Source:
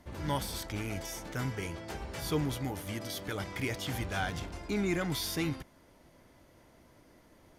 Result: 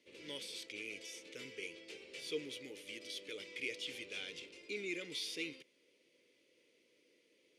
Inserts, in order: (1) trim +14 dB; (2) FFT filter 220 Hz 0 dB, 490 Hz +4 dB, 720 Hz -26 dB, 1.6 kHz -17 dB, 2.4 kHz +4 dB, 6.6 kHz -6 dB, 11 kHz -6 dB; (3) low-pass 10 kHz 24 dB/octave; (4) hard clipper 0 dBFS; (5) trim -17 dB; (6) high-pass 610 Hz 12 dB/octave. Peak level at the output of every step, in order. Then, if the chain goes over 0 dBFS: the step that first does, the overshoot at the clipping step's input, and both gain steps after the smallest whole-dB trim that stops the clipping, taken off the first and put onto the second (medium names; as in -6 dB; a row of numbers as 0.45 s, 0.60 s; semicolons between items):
-6.0 dBFS, -4.0 dBFS, -4.0 dBFS, -4.0 dBFS, -21.0 dBFS, -26.5 dBFS; nothing clips